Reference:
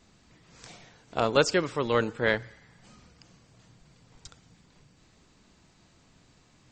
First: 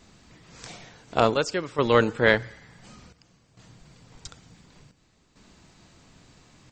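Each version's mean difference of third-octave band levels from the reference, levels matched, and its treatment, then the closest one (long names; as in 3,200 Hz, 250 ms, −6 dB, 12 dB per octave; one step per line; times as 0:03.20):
2.5 dB: square-wave tremolo 0.56 Hz, depth 65%, duty 75%
level +6 dB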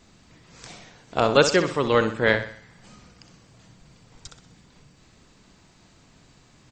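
1.5 dB: repeating echo 63 ms, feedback 41%, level −10 dB
level +5 dB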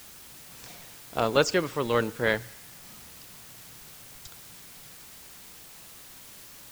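7.0 dB: bit-depth reduction 8 bits, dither triangular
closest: second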